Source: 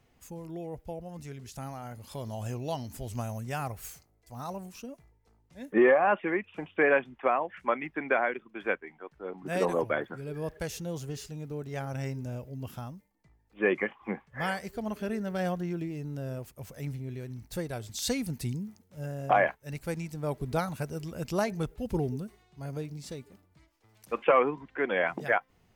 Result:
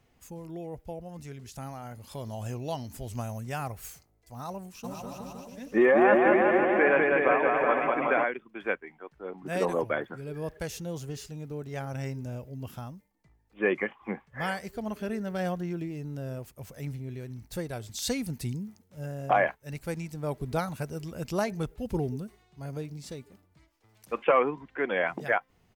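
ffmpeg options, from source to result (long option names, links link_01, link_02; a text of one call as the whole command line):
ffmpeg -i in.wav -filter_complex "[0:a]asplit=3[link_01][link_02][link_03];[link_01]afade=type=out:start_time=4.83:duration=0.02[link_04];[link_02]aecho=1:1:200|370|514.5|637.3|741.7|830.5|905.9|970:0.794|0.631|0.501|0.398|0.316|0.251|0.2|0.158,afade=type=in:start_time=4.83:duration=0.02,afade=type=out:start_time=8.23:duration=0.02[link_05];[link_03]afade=type=in:start_time=8.23:duration=0.02[link_06];[link_04][link_05][link_06]amix=inputs=3:normalize=0" out.wav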